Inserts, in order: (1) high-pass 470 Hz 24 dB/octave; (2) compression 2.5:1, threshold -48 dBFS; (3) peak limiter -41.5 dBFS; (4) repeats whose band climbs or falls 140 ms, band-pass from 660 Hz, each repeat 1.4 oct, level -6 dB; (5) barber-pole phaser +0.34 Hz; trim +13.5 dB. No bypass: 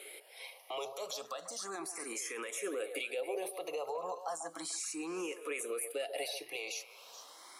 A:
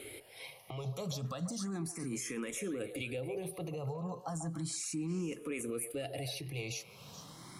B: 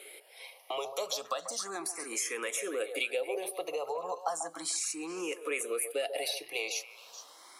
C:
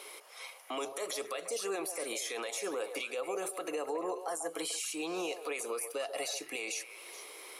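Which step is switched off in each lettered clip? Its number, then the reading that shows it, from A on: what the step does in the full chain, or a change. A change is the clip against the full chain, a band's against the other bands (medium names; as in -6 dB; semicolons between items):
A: 1, 250 Hz band +10.0 dB; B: 3, mean gain reduction 2.5 dB; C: 5, crest factor change -2.5 dB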